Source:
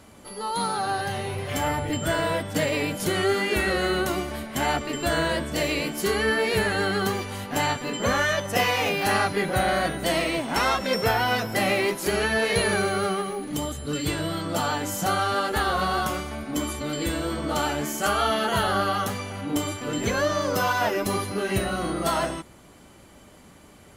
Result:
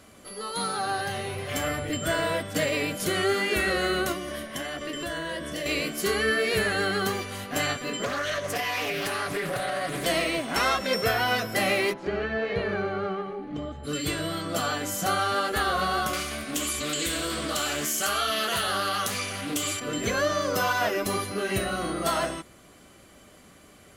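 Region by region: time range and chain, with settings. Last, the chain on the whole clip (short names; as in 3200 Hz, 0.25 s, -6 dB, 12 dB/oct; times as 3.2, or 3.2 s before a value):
4.12–5.66 ripple EQ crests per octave 1.2, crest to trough 7 dB + compressor, threshold -27 dBFS
8.04–10.06 comb 7 ms, depth 91% + compressor 16:1, threshold -23 dBFS + Doppler distortion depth 0.41 ms
11.92–13.83 whine 850 Hz -37 dBFS + tape spacing loss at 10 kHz 37 dB
16.13–19.8 high shelf 2100 Hz +11 dB + compressor 2.5:1, threshold -24 dBFS + Doppler distortion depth 0.18 ms
whole clip: low shelf 330 Hz -5 dB; notch 890 Hz, Q 5.4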